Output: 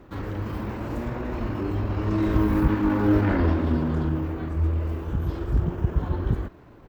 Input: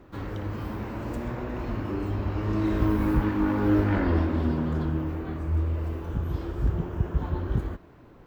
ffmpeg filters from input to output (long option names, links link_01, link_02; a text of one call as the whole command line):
ffmpeg -i in.wav -af "atempo=1.2,volume=2.5dB" out.wav